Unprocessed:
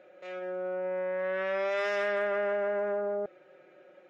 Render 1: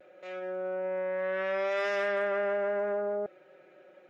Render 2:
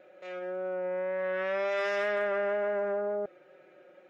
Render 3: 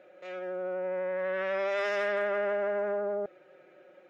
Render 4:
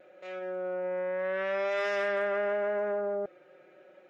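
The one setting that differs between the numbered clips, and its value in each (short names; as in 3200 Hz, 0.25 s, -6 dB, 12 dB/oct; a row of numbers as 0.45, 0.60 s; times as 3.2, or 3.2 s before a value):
vibrato, rate: 0.35, 2, 12, 0.83 Hz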